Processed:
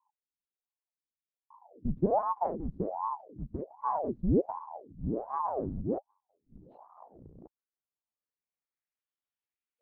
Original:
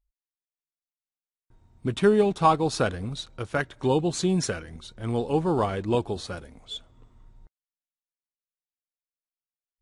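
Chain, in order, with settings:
sub-harmonics by changed cycles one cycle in 2, inverted
0:05.98–0:06.58: gate with flip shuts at −31 dBFS, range −37 dB
low-pass filter sweep 110 Hz → 2,400 Hz, 0:06.25–0:08.98
ring modulator whose carrier an LFO sweeps 540 Hz, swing 85%, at 1.3 Hz

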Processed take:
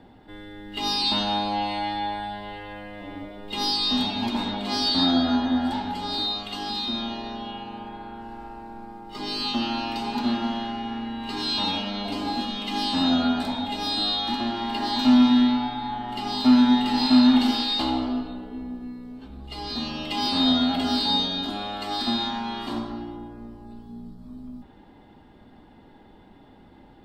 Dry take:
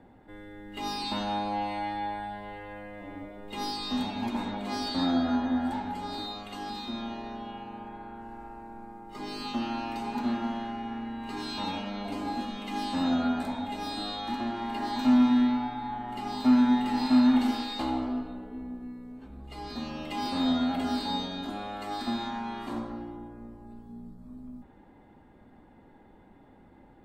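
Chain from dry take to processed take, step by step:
flat-topped bell 3,900 Hz +8.5 dB 1.1 octaves
notch filter 530 Hz, Q 16
level +4.5 dB

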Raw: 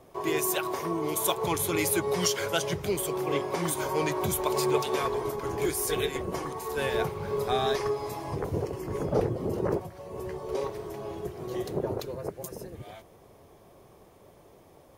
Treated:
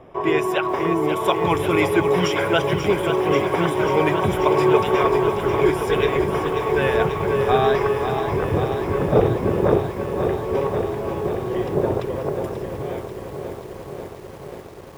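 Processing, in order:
Savitzky-Golay smoothing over 25 samples
feedback echo at a low word length 538 ms, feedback 80%, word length 9 bits, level −8 dB
level +9 dB

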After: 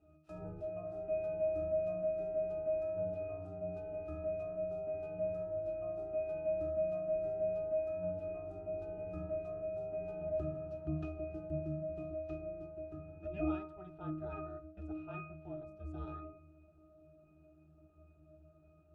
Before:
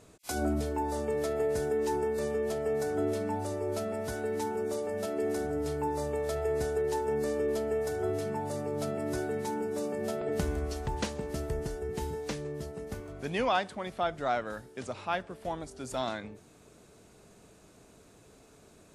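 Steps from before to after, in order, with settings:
ring modulation 190 Hz
resonances in every octave D#, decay 0.59 s
hum removal 83.64 Hz, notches 19
level +14 dB

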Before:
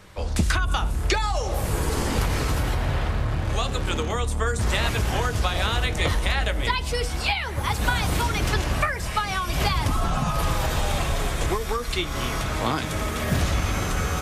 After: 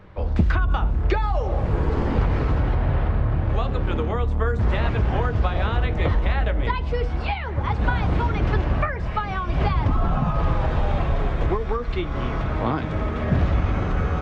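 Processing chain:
head-to-tape spacing loss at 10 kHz 43 dB
level +4 dB

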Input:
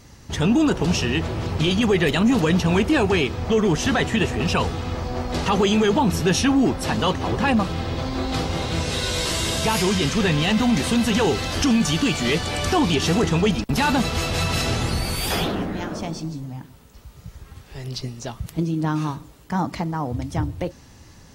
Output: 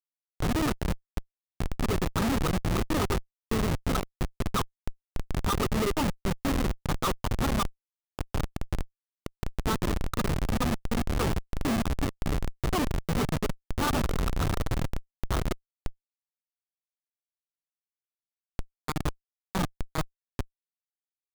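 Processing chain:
transistor ladder low-pass 1,300 Hz, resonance 85%
comparator with hysteresis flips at −25.5 dBFS
level +6.5 dB

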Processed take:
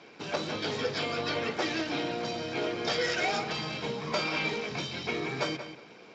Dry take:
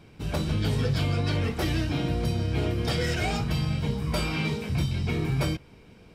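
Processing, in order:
high-pass filter 400 Hz 12 dB per octave
notch filter 2,900 Hz, Q 21
in parallel at +0.5 dB: downward compressor 6 to 1, threshold −43 dBFS, peak gain reduction 15 dB
on the sum: feedback echo with a low-pass in the loop 183 ms, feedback 22%, low-pass 4,500 Hz, level −10 dB
Speex 34 kbit/s 16,000 Hz

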